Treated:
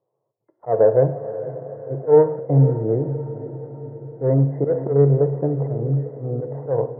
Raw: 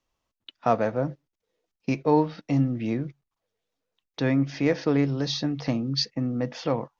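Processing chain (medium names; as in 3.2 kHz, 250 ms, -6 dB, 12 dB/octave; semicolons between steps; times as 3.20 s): FFT filter 140 Hz 0 dB, 240 Hz -16 dB, 430 Hz +8 dB, 1 kHz -7 dB, 1.5 kHz -25 dB; in parallel at -12 dB: hard clipper -22 dBFS, distortion -7 dB; on the sum: slow attack 146 ms; on a send: echo that smears into a reverb 503 ms, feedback 57%, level -13 dB; on the sum: gated-style reverb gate 260 ms falling, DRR 9 dB; FFT band-pass 100–2100 Hz; trim +6.5 dB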